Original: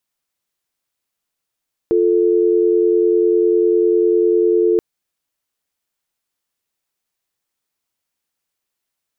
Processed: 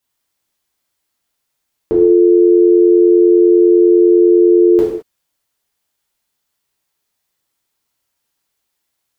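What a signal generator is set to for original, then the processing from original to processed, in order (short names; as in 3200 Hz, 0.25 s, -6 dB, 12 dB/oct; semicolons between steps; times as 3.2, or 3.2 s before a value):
call progress tone dial tone, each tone -14 dBFS 2.88 s
non-linear reverb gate 0.24 s falling, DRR -5.5 dB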